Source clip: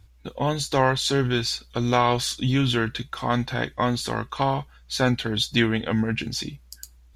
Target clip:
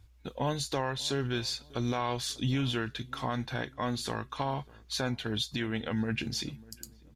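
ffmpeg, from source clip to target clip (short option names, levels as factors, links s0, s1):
-filter_complex "[0:a]alimiter=limit=0.158:level=0:latency=1:release=334,asplit=2[s0][s1];[s1]adelay=596,lowpass=f=950:p=1,volume=0.0841,asplit=2[s2][s3];[s3]adelay=596,lowpass=f=950:p=1,volume=0.44,asplit=2[s4][s5];[s5]adelay=596,lowpass=f=950:p=1,volume=0.44[s6];[s2][s4][s6]amix=inputs=3:normalize=0[s7];[s0][s7]amix=inputs=2:normalize=0,volume=0.562"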